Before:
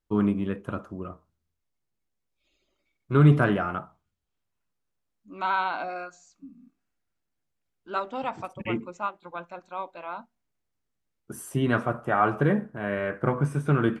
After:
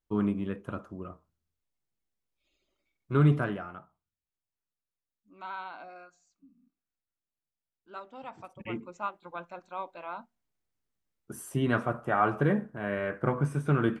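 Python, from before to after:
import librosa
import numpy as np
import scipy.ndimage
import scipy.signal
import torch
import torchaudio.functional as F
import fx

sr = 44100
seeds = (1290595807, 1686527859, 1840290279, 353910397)

y = fx.gain(x, sr, db=fx.line((3.22, -4.5), (3.73, -13.5), (8.14, -13.5), (9.13, -3.0)))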